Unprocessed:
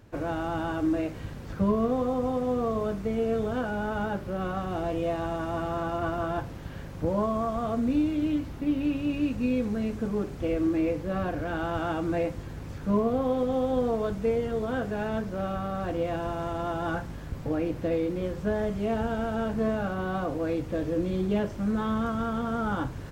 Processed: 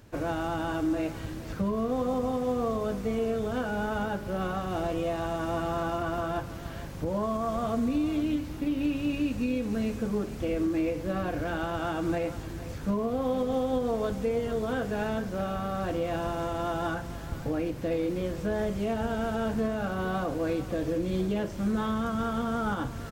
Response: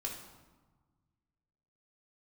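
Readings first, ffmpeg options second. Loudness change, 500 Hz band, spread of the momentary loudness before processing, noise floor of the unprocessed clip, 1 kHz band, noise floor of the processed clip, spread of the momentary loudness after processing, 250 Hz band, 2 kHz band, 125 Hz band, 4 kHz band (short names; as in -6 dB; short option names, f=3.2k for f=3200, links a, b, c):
-1.5 dB, -1.5 dB, 5 LU, -39 dBFS, -0.5 dB, -39 dBFS, 4 LU, -1.5 dB, +0.5 dB, -1.5 dB, +2.5 dB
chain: -af "alimiter=limit=-20.5dB:level=0:latency=1:release=165,highshelf=f=3.5k:g=7,aecho=1:1:458:0.178"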